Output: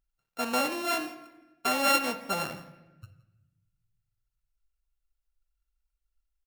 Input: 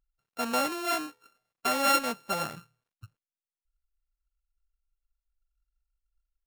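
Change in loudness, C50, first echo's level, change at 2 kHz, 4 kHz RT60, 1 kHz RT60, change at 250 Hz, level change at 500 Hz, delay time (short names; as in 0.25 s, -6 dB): +0.5 dB, 11.0 dB, -20.0 dB, +2.0 dB, 0.80 s, 0.90 s, +1.0 dB, +0.5 dB, 0.168 s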